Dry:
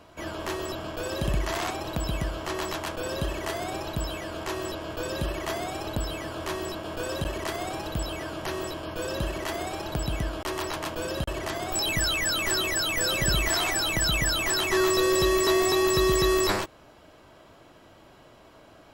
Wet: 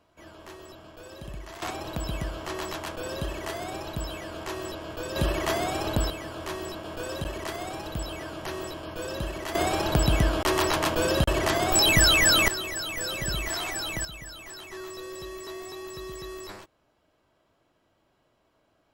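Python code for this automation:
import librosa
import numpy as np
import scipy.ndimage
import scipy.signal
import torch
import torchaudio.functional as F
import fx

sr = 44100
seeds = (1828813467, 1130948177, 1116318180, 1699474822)

y = fx.gain(x, sr, db=fx.steps((0.0, -13.0), (1.62, -2.5), (5.16, 4.0), (6.1, -2.5), (9.55, 7.0), (12.48, -5.5), (14.05, -16.5)))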